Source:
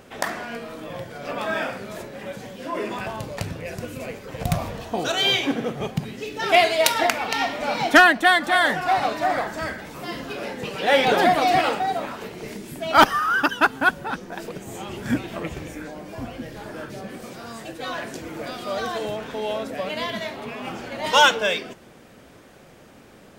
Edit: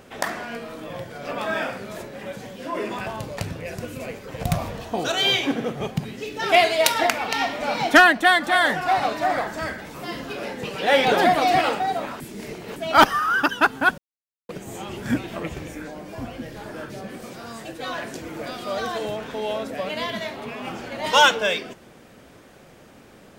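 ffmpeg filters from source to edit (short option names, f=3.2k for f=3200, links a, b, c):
-filter_complex "[0:a]asplit=5[a][b][c][d][e];[a]atrim=end=12.202[f];[b]atrim=start=12.198:end=12.762,asetpts=PTS-STARTPTS,areverse[g];[c]atrim=start=12.758:end=13.98,asetpts=PTS-STARTPTS,afade=t=out:st=1.218:d=0.004:c=hsin[h];[d]atrim=start=13.98:end=14.49,asetpts=PTS-STARTPTS,volume=0[i];[e]atrim=start=14.49,asetpts=PTS-STARTPTS,afade=t=in:d=0.004:c=hsin[j];[f][g]acrossfade=d=0.004:c1=hsin:c2=hsin[k];[h][i][j]concat=n=3:v=0:a=1[l];[k][l]acrossfade=d=0.004:c1=hsin:c2=hsin"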